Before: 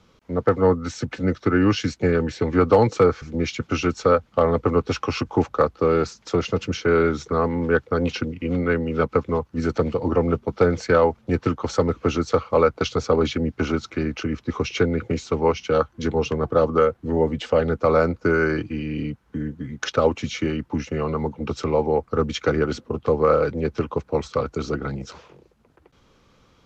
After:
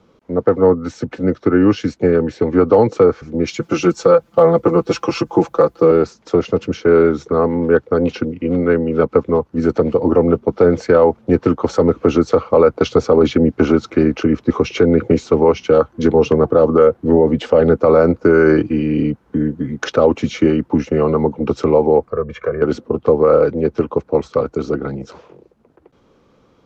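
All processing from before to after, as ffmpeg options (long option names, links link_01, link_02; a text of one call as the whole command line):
ffmpeg -i in.wav -filter_complex "[0:a]asettb=1/sr,asplit=3[link_01][link_02][link_03];[link_01]atrim=end=3.474[link_04];[link_02]atrim=start=3.47:end=5.91,asetpts=PTS-STARTPTS,afade=type=in:duration=0.004:curve=qsin,afade=type=out:start_time=2.436:duration=0.004:curve=qsin,aemphasis=mode=production:type=50fm,aecho=1:1:5.9:0.83,atrim=end_sample=107604[link_05];[link_03]atrim=start=5.906[link_06];[link_04][link_05]acrossfade=duration=0.004:curve1=hsin:curve2=qsin[link_07];[link_07][link_06]acrossfade=duration=0.004:curve1=qsin:curve2=hsin,asettb=1/sr,asplit=3[link_08][link_09][link_10];[link_08]atrim=end=22.104[link_11];[link_09]atrim=start=22.1:end=22.62,asetpts=PTS-STARTPTS,afade=type=in:duration=0.004:curve=qsin,afade=type=out:start_time=0.516:duration=0.004:curve=qsin,highshelf=frequency=2800:width_type=q:width=1.5:gain=-13,acompressor=threshold=-35dB:ratio=2:attack=3.2:release=140:knee=1:detection=peak,aecho=1:1:1.8:0.91,atrim=end_sample=22932[link_12];[link_10]atrim=start=22.616[link_13];[link_11][link_12]acrossfade=duration=0.004:curve1=hsin:curve2=qsin[link_14];[link_14][link_13]acrossfade=duration=0.004:curve1=qsin:curve2=hsin,dynaudnorm=framelen=330:gausssize=31:maxgain=11.5dB,equalizer=frequency=390:width=0.36:gain=12,alimiter=level_in=-3.5dB:limit=-1dB:release=50:level=0:latency=1,volume=-1dB" out.wav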